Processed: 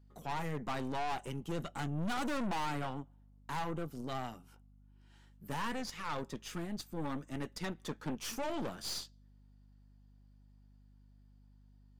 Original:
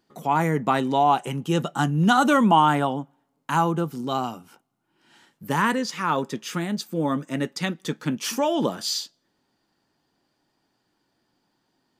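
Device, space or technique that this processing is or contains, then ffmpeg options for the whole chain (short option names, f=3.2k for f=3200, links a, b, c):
valve amplifier with mains hum: -filter_complex "[0:a]aeval=exprs='(tanh(20*val(0)+0.75)-tanh(0.75))/20':c=same,aeval=exprs='val(0)+0.00251*(sin(2*PI*50*n/s)+sin(2*PI*2*50*n/s)/2+sin(2*PI*3*50*n/s)/3+sin(2*PI*4*50*n/s)/4+sin(2*PI*5*50*n/s)/5)':c=same,asettb=1/sr,asplit=3[a][b][c];[a]atrim=end=7.624[d];[b]atrim=start=7.62:end=8.23,asetpts=PTS-STARTPTS,afade=t=in:d=0.004:c=qsin,afade=t=out:st=0.606:d=0.004:c=qsin,equalizer=f=900:w=0.75:g=5.5[e];[c]atrim=start=8.226[f];[d][e]acrossfade=d=0.004:c1=hsin:c2=qsin[g];[g][f]acrossfade=d=0.004:c1=qsin:c2=hsin,volume=-8dB"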